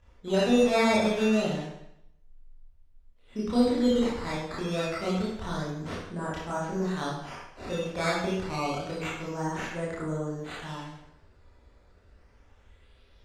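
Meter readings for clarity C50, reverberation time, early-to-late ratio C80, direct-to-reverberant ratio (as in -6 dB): 0.0 dB, 0.80 s, 4.0 dB, -7.5 dB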